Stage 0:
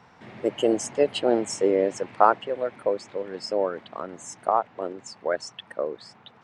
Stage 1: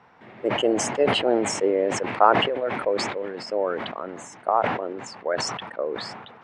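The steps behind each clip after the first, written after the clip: tone controls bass -6 dB, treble -12 dB; decay stretcher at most 43 dB/s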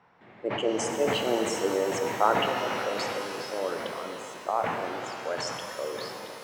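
pitch-shifted reverb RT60 3.5 s, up +12 st, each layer -8 dB, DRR 3 dB; trim -7 dB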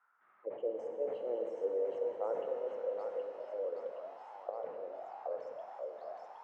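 thinning echo 770 ms, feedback 52%, high-pass 960 Hz, level -3 dB; auto-wah 510–1400 Hz, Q 7.9, down, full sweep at -27 dBFS; trim -2 dB

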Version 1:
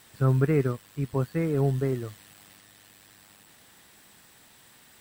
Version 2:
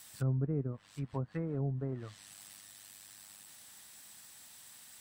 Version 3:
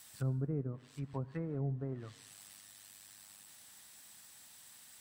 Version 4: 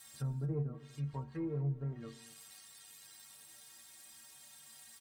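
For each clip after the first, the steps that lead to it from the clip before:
peaking EQ 400 Hz -8 dB 0.79 oct; low-pass that closes with the level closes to 480 Hz, closed at -23 dBFS; tone controls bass -4 dB, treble +10 dB; trim -5 dB
reverberation RT60 0.90 s, pre-delay 70 ms, DRR 19 dB; trim -2.5 dB
inharmonic resonator 68 Hz, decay 0.44 s, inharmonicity 0.03; saturation -37 dBFS, distortion -22 dB; delay 239 ms -19 dB; trim +10 dB

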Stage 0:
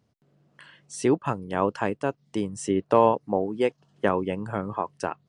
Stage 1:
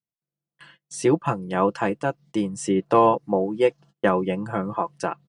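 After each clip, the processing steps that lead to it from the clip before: gate -50 dBFS, range -32 dB; comb 5.9 ms; trim +1.5 dB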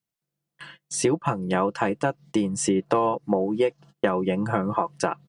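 compression 6:1, threshold -25 dBFS, peak gain reduction 13 dB; trim +6 dB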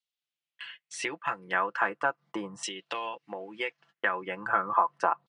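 LFO band-pass saw down 0.38 Hz 970–3600 Hz; trim +5.5 dB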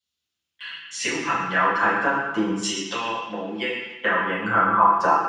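reverberation RT60 1.0 s, pre-delay 3 ms, DRR -12 dB; trim -4.5 dB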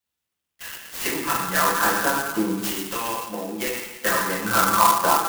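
sampling jitter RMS 0.066 ms

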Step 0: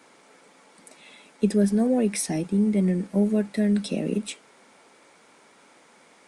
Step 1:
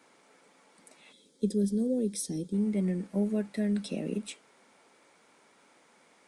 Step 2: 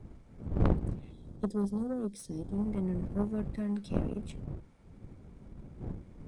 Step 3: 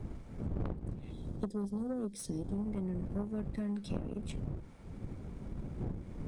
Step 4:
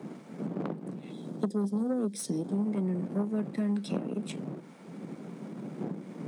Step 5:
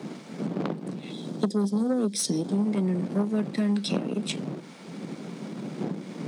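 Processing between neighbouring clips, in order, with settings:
time-frequency box 1.12–2.54 s, 570–3100 Hz -16 dB; trim -7 dB
wind noise 200 Hz -36 dBFS; tilt EQ -1.5 dB/octave; Chebyshev shaper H 3 -24 dB, 6 -11 dB, 7 -31 dB, 8 -13 dB, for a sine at -8 dBFS; trim -4.5 dB
compression 6:1, threshold -41 dBFS, peak gain reduction 20 dB; trim +7 dB
steep high-pass 160 Hz 48 dB/octave; trim +7 dB
peaking EQ 4.4 kHz +10 dB 1.8 oct; trim +4.5 dB

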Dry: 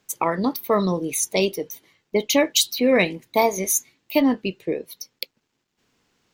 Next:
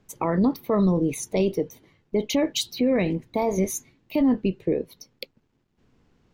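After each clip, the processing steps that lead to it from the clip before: tilt EQ -3.5 dB/octave; peak limiter -14 dBFS, peak gain reduction 10.5 dB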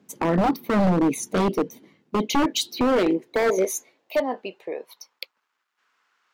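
high-pass sweep 220 Hz -> 1.3 kHz, 2.12–5.59 s; wavefolder -15.5 dBFS; trim +1.5 dB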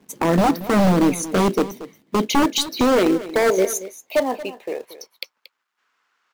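in parallel at -6 dB: companded quantiser 4-bit; on the sum: delay 230 ms -15.5 dB

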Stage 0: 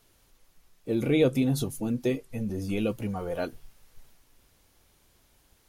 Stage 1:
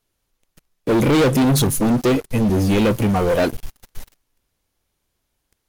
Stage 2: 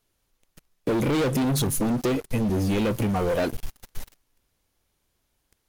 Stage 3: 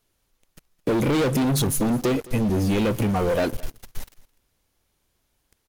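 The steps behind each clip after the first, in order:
waveshaping leveller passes 5
compression 10:1, threshold -22 dBFS, peak gain reduction 8.5 dB
delay 214 ms -21.5 dB; trim +2 dB

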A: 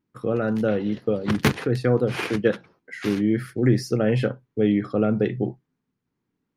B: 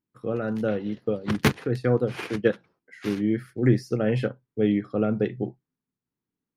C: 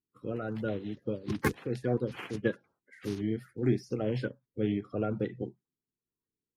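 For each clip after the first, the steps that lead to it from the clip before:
upward expansion 1.5:1, over -35 dBFS
coarse spectral quantiser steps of 30 dB; trim -7 dB

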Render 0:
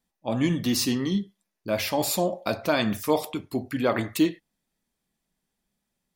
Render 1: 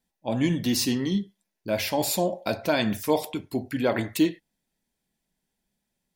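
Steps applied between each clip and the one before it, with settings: band-stop 1.2 kHz, Q 5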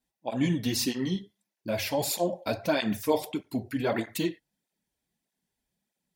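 cancelling through-zero flanger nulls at 1.6 Hz, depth 6.1 ms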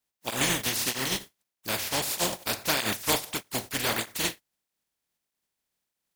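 spectral contrast reduction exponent 0.27

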